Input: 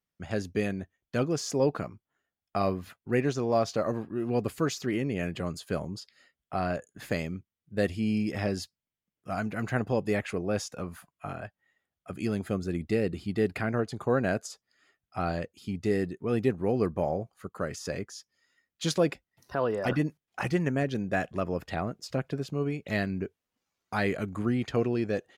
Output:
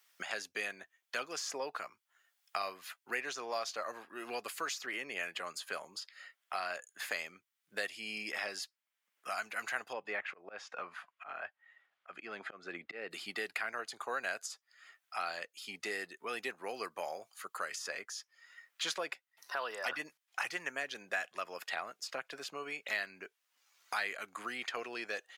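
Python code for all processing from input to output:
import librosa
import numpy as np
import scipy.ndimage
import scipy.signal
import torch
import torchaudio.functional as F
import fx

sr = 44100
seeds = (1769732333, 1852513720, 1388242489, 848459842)

y = fx.chain(x, sr, fx.lowpass(hz=1900.0, slope=12),
    fx.auto_swell(attack_ms=242.0), at=(9.93, 13.11))
y = scipy.signal.sosfilt(scipy.signal.butter(2, 1200.0, 'highpass', fs=sr, output='sos'), y)
y = fx.band_squash(y, sr, depth_pct=70)
y = F.gain(torch.from_numpy(y), 1.0).numpy()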